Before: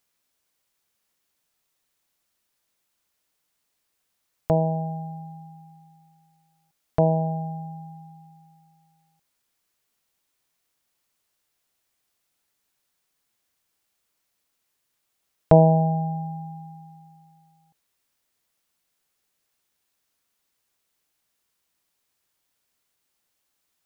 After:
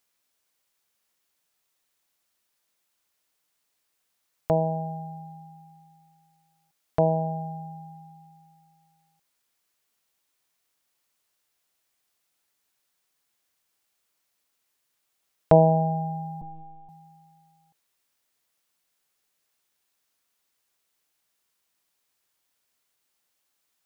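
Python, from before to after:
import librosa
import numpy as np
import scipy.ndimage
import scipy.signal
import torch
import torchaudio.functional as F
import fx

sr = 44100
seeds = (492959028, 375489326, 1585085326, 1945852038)

y = fx.low_shelf(x, sr, hz=280.0, db=-5.5)
y = fx.lpc_vocoder(y, sr, seeds[0], excitation='pitch_kept', order=8, at=(16.41, 16.89))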